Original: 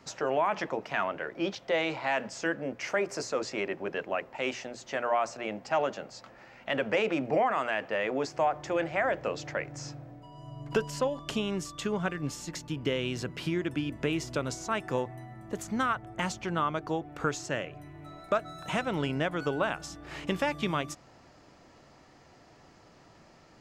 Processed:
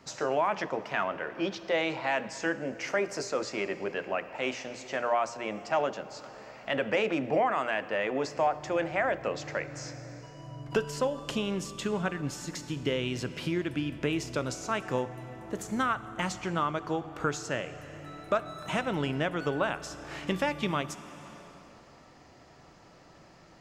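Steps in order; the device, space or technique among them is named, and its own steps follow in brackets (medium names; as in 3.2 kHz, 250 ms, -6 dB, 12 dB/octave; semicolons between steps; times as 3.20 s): compressed reverb return (on a send at -3.5 dB: reverberation RT60 2.3 s, pre-delay 13 ms + compression, threshold -39 dBFS, peak gain reduction 15 dB)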